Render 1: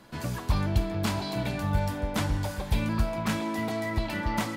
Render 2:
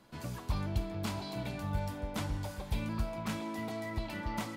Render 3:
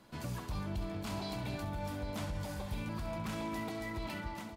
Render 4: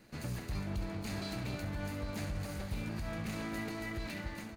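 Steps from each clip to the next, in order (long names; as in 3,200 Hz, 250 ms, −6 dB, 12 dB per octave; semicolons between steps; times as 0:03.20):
parametric band 1,700 Hz −3.5 dB 0.28 octaves; level −8 dB
fade-out on the ending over 0.50 s; brickwall limiter −31.5 dBFS, peak gain reduction 11 dB; multi-tap delay 66/267/809 ms −11/−12/−12.5 dB; level +1 dB
lower of the sound and its delayed copy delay 0.46 ms; level +1 dB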